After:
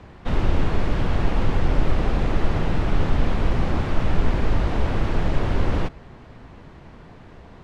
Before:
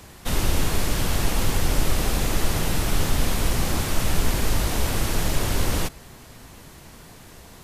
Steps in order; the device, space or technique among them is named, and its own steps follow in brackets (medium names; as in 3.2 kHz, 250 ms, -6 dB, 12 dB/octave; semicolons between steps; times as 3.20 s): phone in a pocket (low-pass 3.3 kHz 12 dB/octave; treble shelf 2.2 kHz -10 dB); trim +2.5 dB